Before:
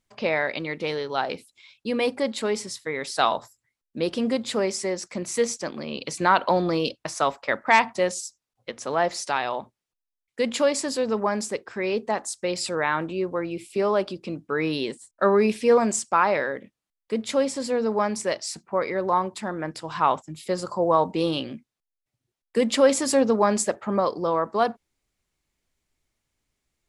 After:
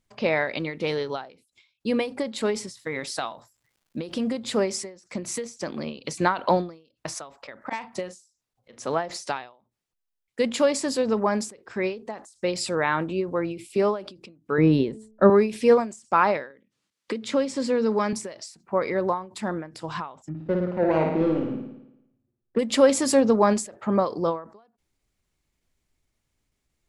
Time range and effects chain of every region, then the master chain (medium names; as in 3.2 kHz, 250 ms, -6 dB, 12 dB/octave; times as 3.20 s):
2.79–4.33 s: band-stop 420 Hz, Q 8.8 + compression, threshold -25 dBFS + crackle 280 per s -58 dBFS
7.62–8.80 s: slow attack 167 ms + doubling 38 ms -11.5 dB
14.58–15.30 s: tilt EQ -3.5 dB/octave + de-hum 217.6 Hz, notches 4
16.50–18.13 s: band-pass 130–7300 Hz + peaking EQ 710 Hz -8.5 dB 0.38 oct + three bands compressed up and down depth 70%
20.29–22.59 s: median filter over 41 samples + low-pass 2.1 kHz + flutter echo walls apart 9.6 m, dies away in 0.86 s
whole clip: bass shelf 340 Hz +4.5 dB; endings held to a fixed fall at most 140 dB/s